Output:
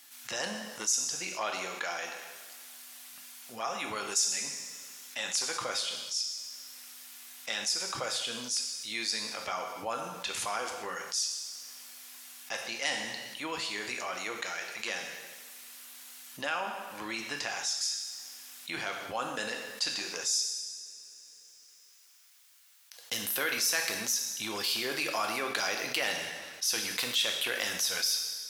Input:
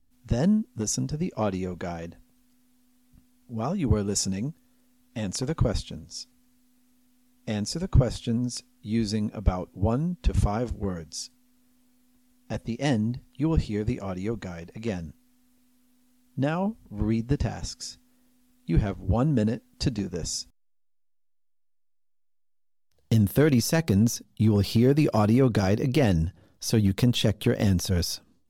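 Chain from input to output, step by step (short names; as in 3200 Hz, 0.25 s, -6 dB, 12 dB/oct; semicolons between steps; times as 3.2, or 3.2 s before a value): HPF 1400 Hz 12 dB/oct; reverb, pre-delay 3 ms, DRR 4.5 dB; fast leveller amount 50%; gain -1.5 dB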